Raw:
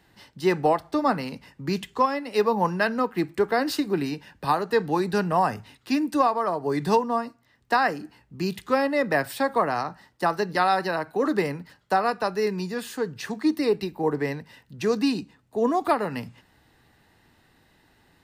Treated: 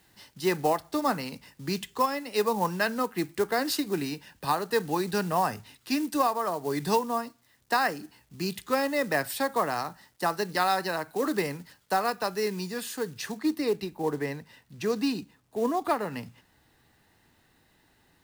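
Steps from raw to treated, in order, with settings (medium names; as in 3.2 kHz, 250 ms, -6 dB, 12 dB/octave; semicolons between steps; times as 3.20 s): companded quantiser 6-bit; treble shelf 3.8 kHz +9 dB, from 13.37 s +2 dB; trim -4.5 dB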